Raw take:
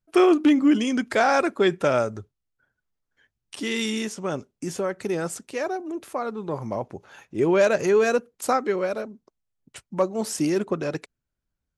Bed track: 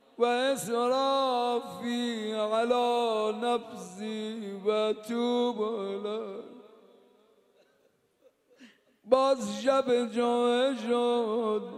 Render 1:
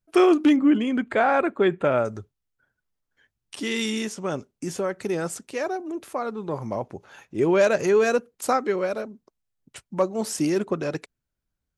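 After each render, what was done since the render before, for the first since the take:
0:00.56–0:02.05: moving average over 8 samples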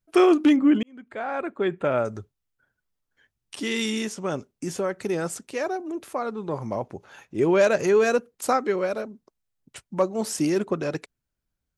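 0:00.83–0:02.19: fade in
0:06.23–0:06.68: bad sample-rate conversion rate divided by 2×, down none, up filtered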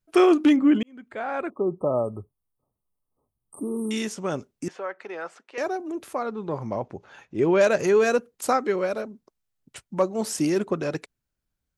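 0:01.50–0:03.91: linear-phase brick-wall band-stop 1,300–8,100 Hz
0:04.68–0:05.58: band-pass filter 700–2,300 Hz
0:06.23–0:07.61: high-frequency loss of the air 69 metres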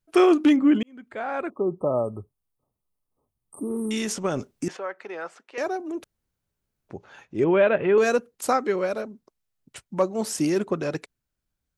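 0:03.70–0:04.77: transient designer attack +4 dB, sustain +8 dB
0:06.04–0:06.89: fill with room tone
0:07.44–0:07.98: Butterworth low-pass 3,500 Hz 72 dB per octave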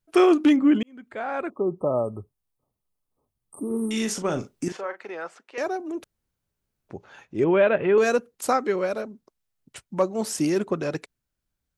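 0:03.67–0:05.10: double-tracking delay 40 ms −8.5 dB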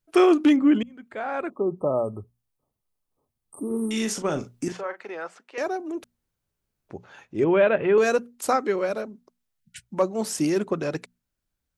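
0:09.60–0:09.83: time-frequency box erased 220–1,400 Hz
mains-hum notches 60/120/180/240 Hz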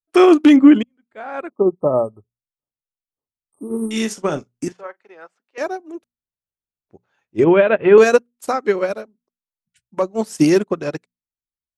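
boost into a limiter +14.5 dB
expander for the loud parts 2.5 to 1, over −27 dBFS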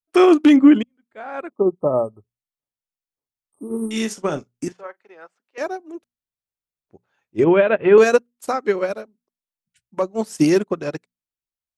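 level −2 dB

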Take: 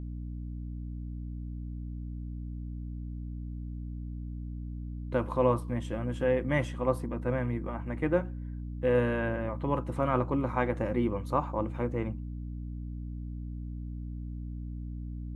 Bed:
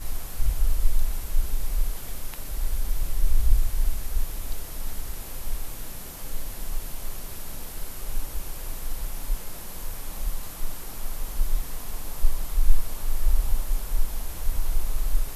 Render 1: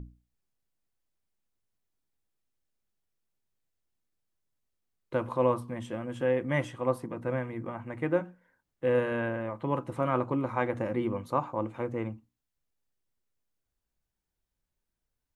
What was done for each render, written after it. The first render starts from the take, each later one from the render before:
mains-hum notches 60/120/180/240/300 Hz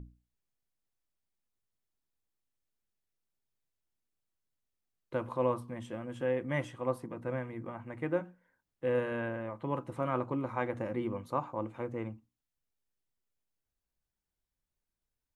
level −4.5 dB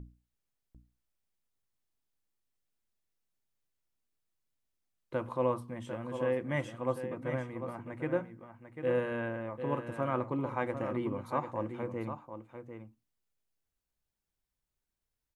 single-tap delay 747 ms −9 dB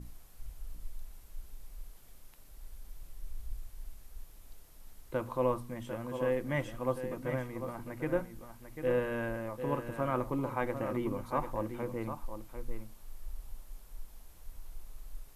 mix in bed −21.5 dB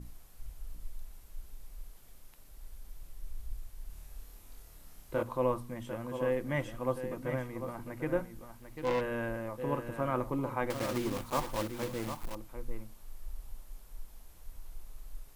0:03.87–0:05.23: flutter between parallel walls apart 4.6 metres, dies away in 0.5 s
0:08.59–0:09.01: phase distortion by the signal itself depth 0.5 ms
0:10.70–0:12.35: one scale factor per block 3 bits

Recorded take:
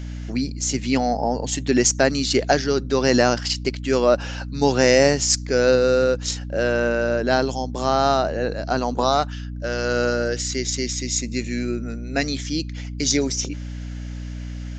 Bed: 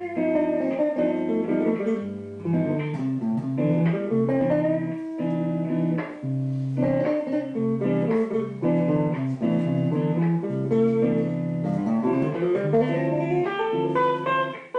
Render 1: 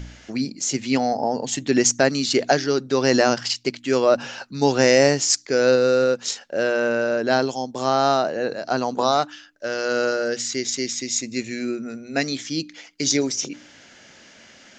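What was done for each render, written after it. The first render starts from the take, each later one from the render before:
hum removal 60 Hz, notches 5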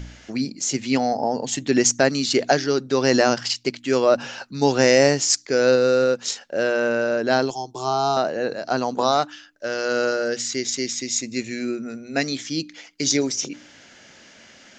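0:07.50–0:08.17: phaser with its sweep stopped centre 360 Hz, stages 8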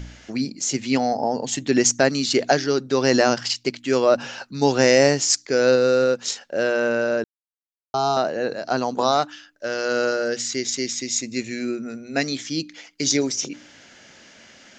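0:07.24–0:07.94: silence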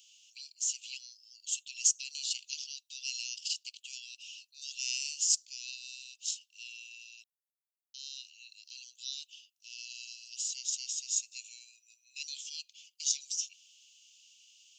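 Butterworth high-pass 2,700 Hz 96 dB per octave
parametric band 4,300 Hz −11.5 dB 1.5 octaves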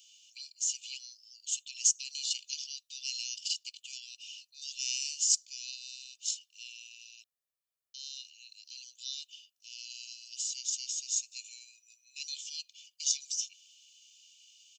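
comb filter 1.7 ms, depth 51%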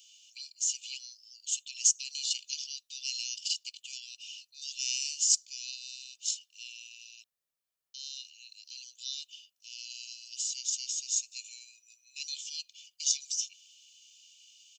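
level +1.5 dB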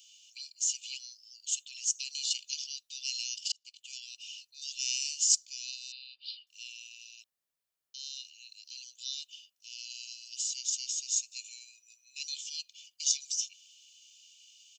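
0:01.55–0:02.05: transient designer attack −12 dB, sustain +2 dB
0:03.52–0:04.03: fade in
0:05.92–0:06.47: Chebyshev low-pass filter 4,800 Hz, order 8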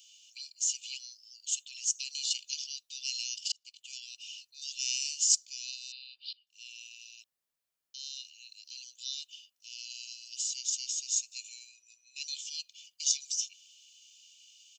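0:06.33–0:06.81: fade in, from −23.5 dB
0:11.67–0:12.29: low-pass filter 8,500 Hz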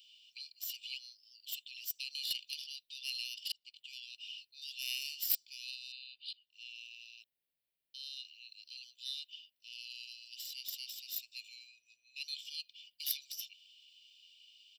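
phase distortion by the signal itself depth 0.061 ms
phaser with its sweep stopped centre 2,900 Hz, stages 4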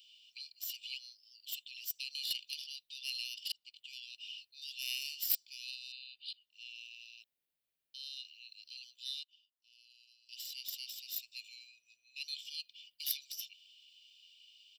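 0:09.23–0:10.29: guitar amp tone stack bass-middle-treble 6-0-2

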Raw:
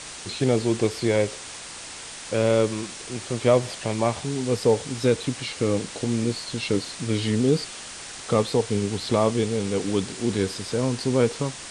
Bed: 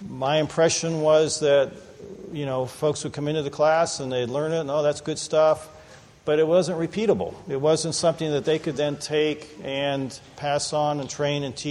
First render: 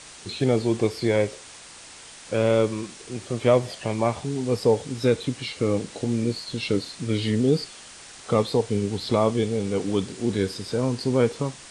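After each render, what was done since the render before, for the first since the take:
noise reduction from a noise print 6 dB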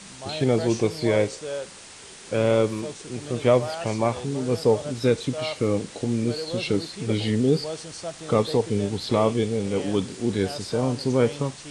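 mix in bed −13 dB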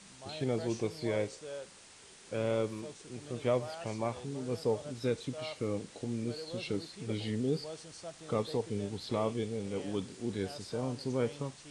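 level −11.5 dB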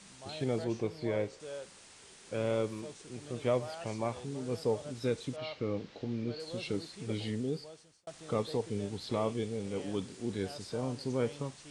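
0:00.64–0:01.40: low-pass filter 2,800 Hz 6 dB per octave
0:05.36–0:06.40: low-pass filter 4,800 Hz 24 dB per octave
0:07.24–0:08.07: fade out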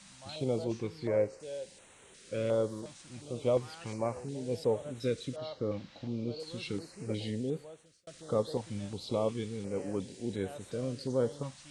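hollow resonant body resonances 530/3,900 Hz, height 7 dB
notch on a step sequencer 2.8 Hz 430–4,900 Hz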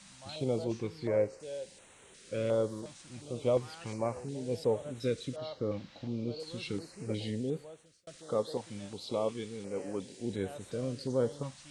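0:08.16–0:10.21: low-shelf EQ 150 Hz −11.5 dB

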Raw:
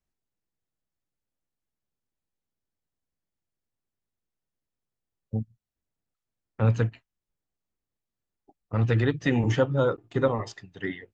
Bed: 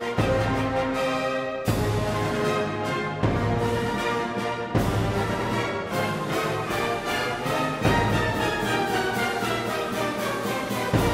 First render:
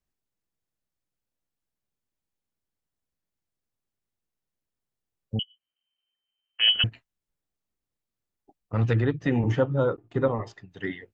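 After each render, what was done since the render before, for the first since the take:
0:05.39–0:06.84: voice inversion scrambler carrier 3,100 Hz
0:08.93–0:10.71: high-shelf EQ 2,900 Hz −11.5 dB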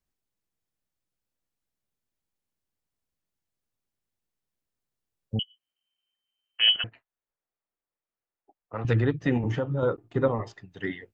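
0:06.76–0:08.85: three-way crossover with the lows and the highs turned down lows −14 dB, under 380 Hz, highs −17 dB, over 2,400 Hz
0:09.37–0:09.83: downward compressor, threshold −23 dBFS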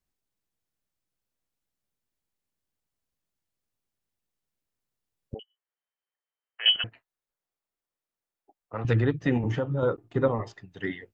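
0:05.34–0:06.66: Chebyshev band-pass filter 400–2,000 Hz, order 3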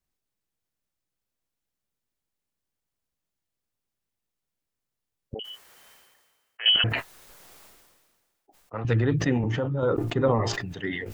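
level that may fall only so fast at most 36 dB per second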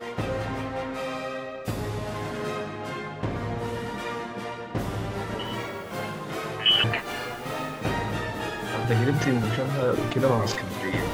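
mix in bed −6.5 dB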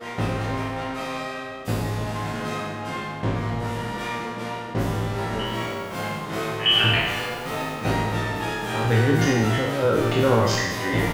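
peak hold with a decay on every bin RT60 1.25 s
double-tracking delay 18 ms −6 dB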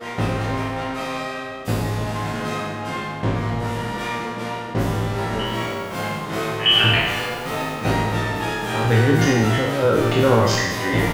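level +3 dB

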